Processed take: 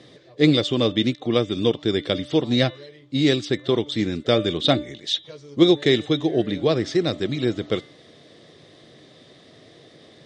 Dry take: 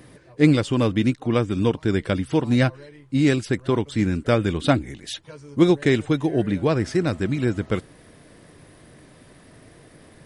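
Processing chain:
loudspeaker in its box 170–6,500 Hz, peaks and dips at 190 Hz −6 dB, 270 Hz −4 dB, 940 Hz −10 dB, 1,500 Hz −9 dB, 2,500 Hz −5 dB, 3,600 Hz +10 dB
hum removal 295.2 Hz, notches 13
level +3 dB

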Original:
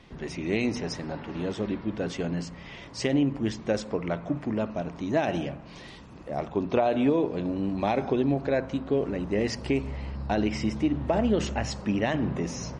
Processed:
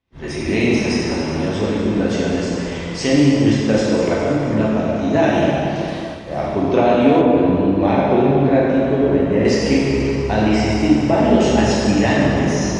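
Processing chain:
dense smooth reverb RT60 2.9 s, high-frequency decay 0.85×, DRR −6.5 dB
downward expander −31 dBFS
0:07.21–0:09.45: high-shelf EQ 3,500 Hz −10 dB
level +5 dB

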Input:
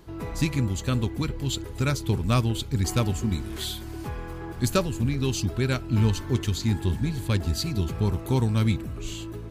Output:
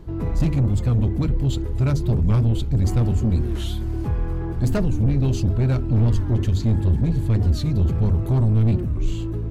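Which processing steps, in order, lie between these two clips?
low-shelf EQ 460 Hz +6.5 dB
mains-hum notches 50/100/150/200/250/300/350/400 Hz
soft clipping −20 dBFS, distortion −9 dB
spectral tilt −2 dB per octave
wow of a warped record 45 rpm, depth 160 cents

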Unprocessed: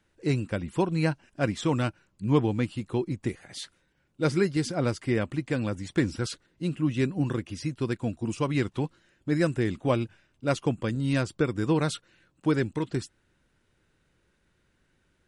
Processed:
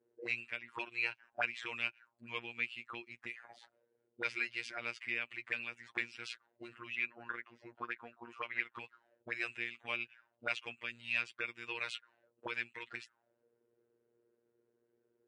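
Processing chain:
phases set to zero 118 Hz
0:06.95–0:08.74: bass and treble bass −8 dB, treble −12 dB
envelope filter 420–2,500 Hz, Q 6.2, up, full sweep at −27.5 dBFS
level +9.5 dB

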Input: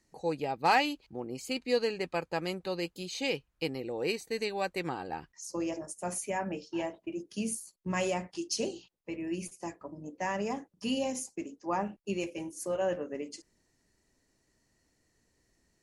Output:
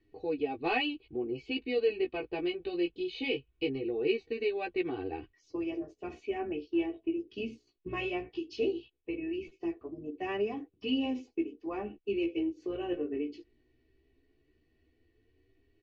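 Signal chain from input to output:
inverse Chebyshev low-pass filter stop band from 9,100 Hz, stop band 60 dB
flat-topped bell 1,100 Hz −11.5 dB
notch filter 2,100 Hz, Q 13
comb filter 2.7 ms, depth 93%
in parallel at −1.5 dB: downward compressor, threshold −35 dBFS, peak gain reduction 11 dB
on the sum: flanger 0.19 Hz, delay 9.7 ms, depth 8 ms, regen +6%

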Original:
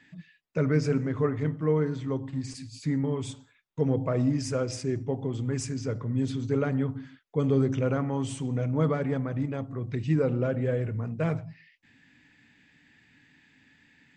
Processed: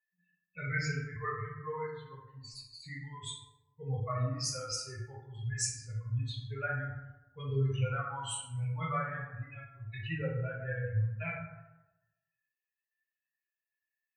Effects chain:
spectral dynamics exaggerated over time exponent 3
drawn EQ curve 110 Hz 0 dB, 240 Hz −23 dB, 1,700 Hz +5 dB
dense smooth reverb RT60 0.99 s, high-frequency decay 0.45×, DRR −5 dB

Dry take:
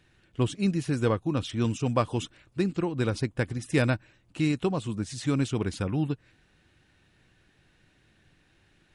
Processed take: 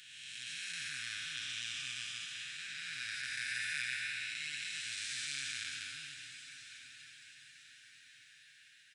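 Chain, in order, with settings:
spectrum smeared in time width 654 ms
elliptic high-pass filter 1,600 Hz, stop band 40 dB
comb filter 7.4 ms
on a send: feedback delay with all-pass diffusion 1,093 ms, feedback 43%, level −12 dB
on the sum: level +6.5 dB

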